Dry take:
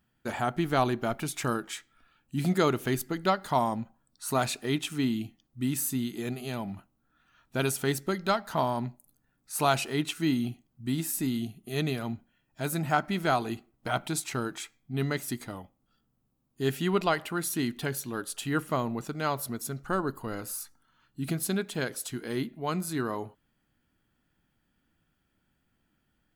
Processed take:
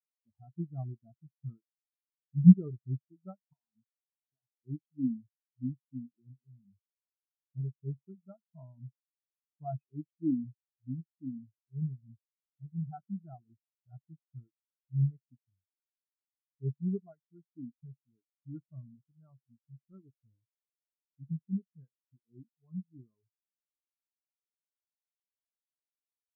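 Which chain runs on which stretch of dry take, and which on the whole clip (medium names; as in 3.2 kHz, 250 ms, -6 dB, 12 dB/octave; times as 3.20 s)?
3.53–4.54 s: tilt EQ +1.5 dB/octave + compression 16:1, threshold -32 dBFS
whole clip: peaking EQ 73 Hz +13 dB 2.3 oct; spectral contrast expander 4:1; trim +2.5 dB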